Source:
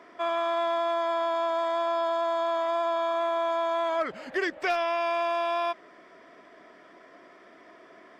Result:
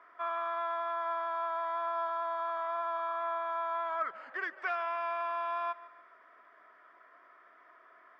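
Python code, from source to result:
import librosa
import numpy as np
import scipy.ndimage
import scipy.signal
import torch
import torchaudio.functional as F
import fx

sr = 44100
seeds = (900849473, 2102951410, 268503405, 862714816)

y = fx.bandpass_q(x, sr, hz=1300.0, q=2.6)
y = fx.echo_feedback(y, sr, ms=146, feedback_pct=44, wet_db=-19)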